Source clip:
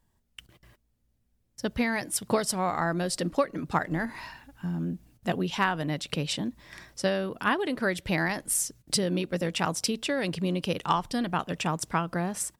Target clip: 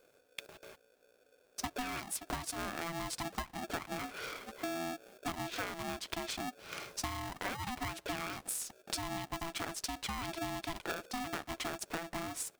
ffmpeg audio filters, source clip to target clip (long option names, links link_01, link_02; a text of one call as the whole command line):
ffmpeg -i in.wav -af "acompressor=threshold=-40dB:ratio=8,aeval=exprs='val(0)*sgn(sin(2*PI*500*n/s))':channel_layout=same,volume=3.5dB" out.wav